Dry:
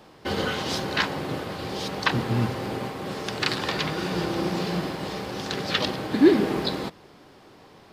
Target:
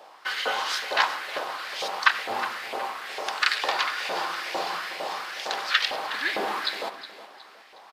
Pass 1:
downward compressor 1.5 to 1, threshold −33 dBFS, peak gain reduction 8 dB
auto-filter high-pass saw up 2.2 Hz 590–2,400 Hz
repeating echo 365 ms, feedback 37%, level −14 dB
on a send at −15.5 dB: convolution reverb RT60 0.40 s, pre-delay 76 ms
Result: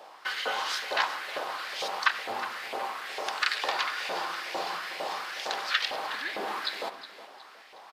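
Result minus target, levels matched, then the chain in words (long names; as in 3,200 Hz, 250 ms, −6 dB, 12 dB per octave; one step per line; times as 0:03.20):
downward compressor: peak gain reduction +8 dB
auto-filter high-pass saw up 2.2 Hz 590–2,400 Hz
repeating echo 365 ms, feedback 37%, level −14 dB
on a send at −15.5 dB: convolution reverb RT60 0.40 s, pre-delay 76 ms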